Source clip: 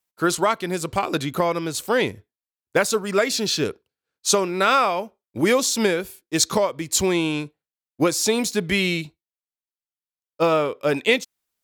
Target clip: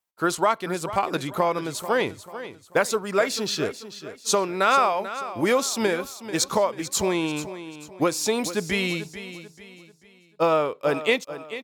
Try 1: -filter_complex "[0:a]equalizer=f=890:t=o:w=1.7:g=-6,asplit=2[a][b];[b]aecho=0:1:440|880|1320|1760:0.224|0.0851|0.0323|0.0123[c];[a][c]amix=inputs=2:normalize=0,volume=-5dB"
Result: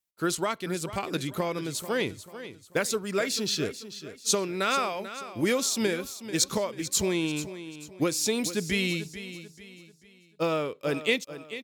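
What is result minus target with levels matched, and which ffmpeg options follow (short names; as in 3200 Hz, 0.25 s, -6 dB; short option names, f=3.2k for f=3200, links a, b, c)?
1000 Hz band -5.5 dB
-filter_complex "[0:a]equalizer=f=890:t=o:w=1.7:g=5.5,asplit=2[a][b];[b]aecho=0:1:440|880|1320|1760:0.224|0.0851|0.0323|0.0123[c];[a][c]amix=inputs=2:normalize=0,volume=-5dB"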